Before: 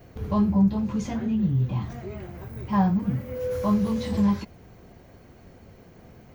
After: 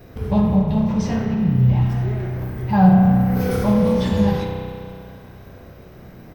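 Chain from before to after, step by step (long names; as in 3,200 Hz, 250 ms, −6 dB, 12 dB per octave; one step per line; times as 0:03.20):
formants moved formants −2 semitones
double-tracking delay 48 ms −11 dB
echo with shifted repeats 90 ms, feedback 52%, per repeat −38 Hz, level −12.5 dB
spring reverb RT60 2.4 s, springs 32 ms, chirp 40 ms, DRR 0.5 dB
level +5.5 dB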